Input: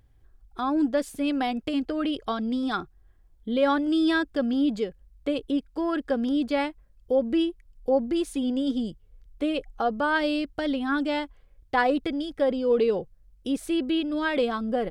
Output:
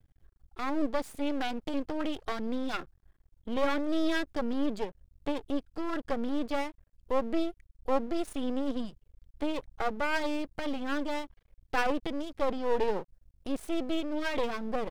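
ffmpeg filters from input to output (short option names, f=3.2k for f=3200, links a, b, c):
-af "aeval=exprs='max(val(0),0)':c=same,volume=-1.5dB"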